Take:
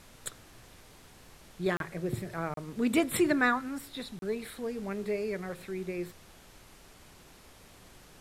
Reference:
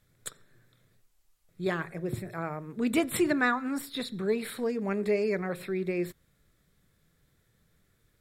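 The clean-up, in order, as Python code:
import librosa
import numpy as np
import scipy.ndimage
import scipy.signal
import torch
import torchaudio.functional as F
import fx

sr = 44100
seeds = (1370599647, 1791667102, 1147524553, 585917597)

y = fx.fix_interpolate(x, sr, at_s=(1.77, 2.54, 4.19), length_ms=32.0)
y = fx.noise_reduce(y, sr, print_start_s=7.2, print_end_s=7.7, reduce_db=14.0)
y = fx.gain(y, sr, db=fx.steps((0.0, 0.0), (3.61, 5.5)))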